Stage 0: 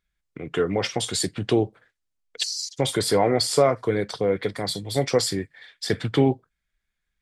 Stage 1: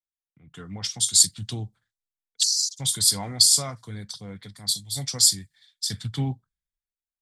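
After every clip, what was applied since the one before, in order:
drawn EQ curve 110 Hz 0 dB, 210 Hz −3 dB, 380 Hz −20 dB, 540 Hz −19 dB, 850 Hz −9 dB, 2,500 Hz −7 dB, 3,600 Hz +7 dB, 6,800 Hz +13 dB
multiband upward and downward expander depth 70%
level −4.5 dB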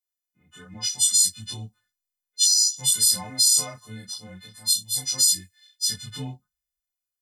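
every partial snapped to a pitch grid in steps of 3 semitones
multi-voice chorus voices 6, 1.1 Hz, delay 20 ms, depth 3 ms
brickwall limiter −5.5 dBFS, peak gain reduction 10.5 dB
level −2.5 dB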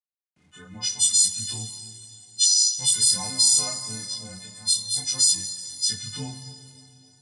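bit reduction 11 bits
dense smooth reverb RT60 3.3 s, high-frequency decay 0.9×, DRR 8.5 dB
downsampling to 22,050 Hz

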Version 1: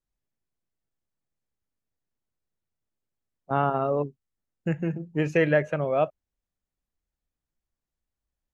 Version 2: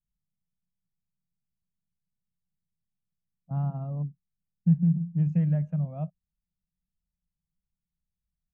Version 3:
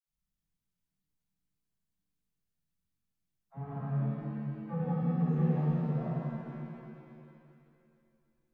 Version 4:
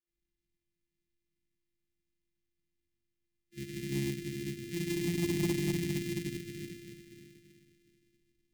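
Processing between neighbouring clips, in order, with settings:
drawn EQ curve 120 Hz 0 dB, 180 Hz +10 dB, 370 Hz −30 dB, 710 Hz −16 dB, 1,600 Hz −28 dB
soft clipping −26.5 dBFS, distortion −8 dB; all-pass dispersion lows, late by 69 ms, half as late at 540 Hz; reverb with rising layers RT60 2.5 s, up +7 semitones, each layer −8 dB, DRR −8.5 dB; level −7 dB
samples sorted by size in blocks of 128 samples; elliptic band-stop filter 370–1,900 Hz, stop band 40 dB; soft clipping −22 dBFS, distortion −20 dB

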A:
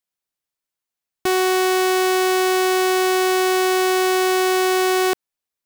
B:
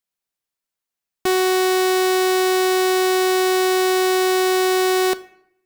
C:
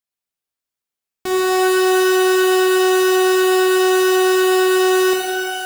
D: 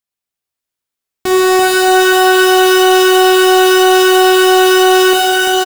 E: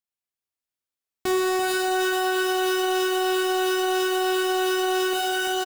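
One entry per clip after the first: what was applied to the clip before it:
convolution reverb RT60 0.70 s, pre-delay 4 ms, DRR 12.5 dB
reverb with rising layers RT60 2 s, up +12 semitones, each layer −2 dB, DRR 0 dB; level −4.5 dB
bouncing-ball delay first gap 340 ms, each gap 0.85×, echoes 5; leveller curve on the samples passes 1; parametric band 84 Hz +3.5 dB; level +4 dB
brickwall limiter −9 dBFS, peak gain reduction 7.5 dB; level −9 dB

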